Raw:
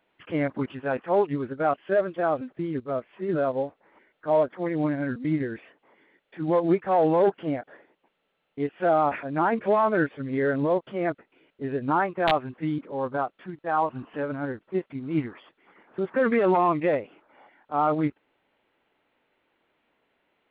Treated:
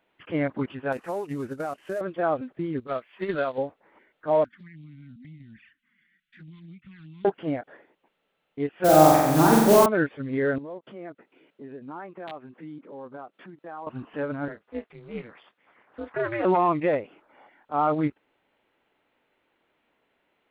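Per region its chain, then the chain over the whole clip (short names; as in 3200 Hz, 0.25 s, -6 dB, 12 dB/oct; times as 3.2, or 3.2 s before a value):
0.92–2.01 CVSD 64 kbps + notch 3300 Hz, Q 17 + compressor 10:1, threshold -26 dBFS
2.87–3.58 tilt shelf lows -8.5 dB, about 1200 Hz + transient shaper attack +11 dB, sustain -2 dB
4.44–7.25 Chebyshev band-stop 220–1600 Hz, order 3 + envelope flanger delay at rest 6.5 ms, full sweep at -32 dBFS + compressor 4:1, threshold -45 dBFS
8.84–9.86 tilt -3 dB/oct + modulation noise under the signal 14 dB + flutter echo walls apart 7.7 m, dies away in 1.2 s
10.58–13.87 low shelf 320 Hz +8 dB + compressor 2.5:1, threshold -43 dBFS + HPF 210 Hz
14.48–16.45 HPF 430 Hz + doubler 27 ms -12 dB + ring modulator 120 Hz
whole clip: dry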